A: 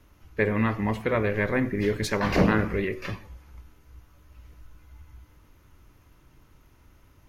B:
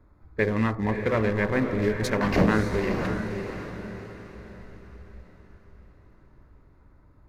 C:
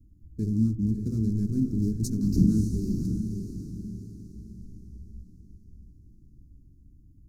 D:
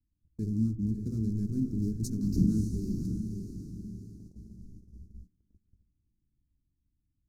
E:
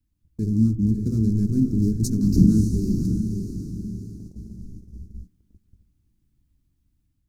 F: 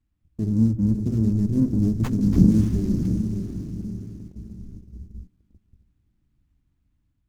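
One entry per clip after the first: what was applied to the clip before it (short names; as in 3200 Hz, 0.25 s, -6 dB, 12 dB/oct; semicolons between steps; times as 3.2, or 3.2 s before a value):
Wiener smoothing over 15 samples; diffused feedback echo 0.577 s, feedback 43%, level -6.5 dB
inverse Chebyshev band-stop 520–3300 Hz, stop band 40 dB; gain +2 dB
gate -43 dBFS, range -20 dB; gain -4.5 dB
AGC gain up to 3.5 dB; gain +6.5 dB
running maximum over 9 samples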